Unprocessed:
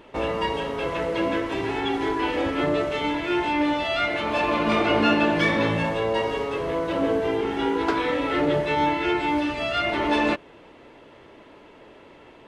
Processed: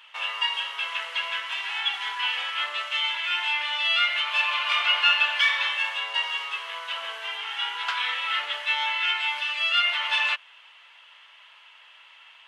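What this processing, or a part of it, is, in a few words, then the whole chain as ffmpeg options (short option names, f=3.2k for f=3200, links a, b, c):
headphones lying on a table: -af "highpass=f=1.1k:w=0.5412,highpass=f=1.1k:w=1.3066,equalizer=f=3k:t=o:w=0.48:g=11"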